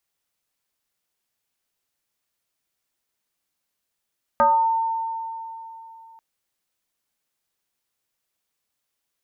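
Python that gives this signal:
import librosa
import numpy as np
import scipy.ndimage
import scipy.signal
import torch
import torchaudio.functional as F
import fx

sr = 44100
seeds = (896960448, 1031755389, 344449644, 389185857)

y = fx.fm2(sr, length_s=1.79, level_db=-12.5, carrier_hz=904.0, ratio=0.37, index=1.4, index_s=0.51, decay_s=3.23, shape='exponential')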